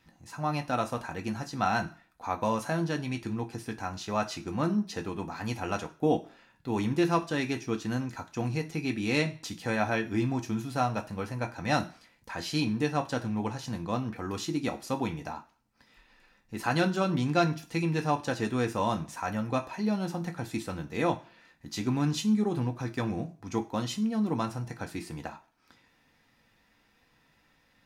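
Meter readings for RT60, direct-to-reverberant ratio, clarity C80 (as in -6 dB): not exponential, 2.5 dB, 20.5 dB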